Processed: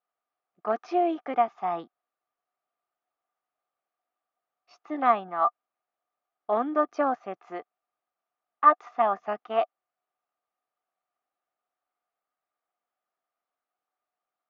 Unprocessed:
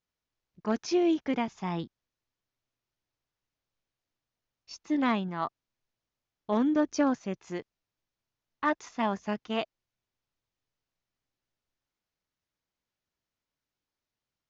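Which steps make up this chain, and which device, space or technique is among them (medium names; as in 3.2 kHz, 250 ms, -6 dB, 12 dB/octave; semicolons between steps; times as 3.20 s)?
tin-can telephone (band-pass 400–2200 Hz; small resonant body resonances 730/1200 Hz, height 16 dB, ringing for 35 ms)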